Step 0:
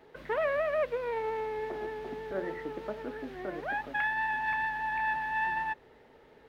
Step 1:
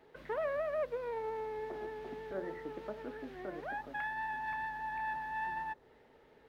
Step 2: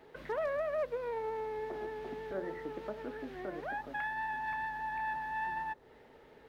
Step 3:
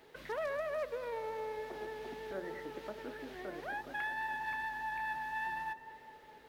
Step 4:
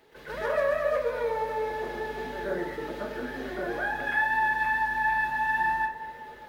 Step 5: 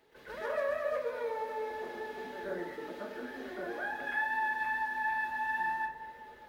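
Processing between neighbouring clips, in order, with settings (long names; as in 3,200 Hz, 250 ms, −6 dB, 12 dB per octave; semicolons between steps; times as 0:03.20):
dynamic equaliser 2,500 Hz, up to −7 dB, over −47 dBFS, Q 1.1; level −5 dB
in parallel at −3 dB: downward compressor, threshold −49 dBFS, peak gain reduction 16.5 dB; on the sum: hard clipping −27.5 dBFS, distortion −37 dB
high-shelf EQ 2,400 Hz +11.5 dB; tape delay 207 ms, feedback 80%, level −12.5 dB, low-pass 2,000 Hz; level −4 dB
dense smooth reverb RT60 0.5 s, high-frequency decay 0.5×, pre-delay 110 ms, DRR −9.5 dB; level that may rise only so fast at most 310 dB per second
mains-hum notches 50/100/150 Hz; level −7 dB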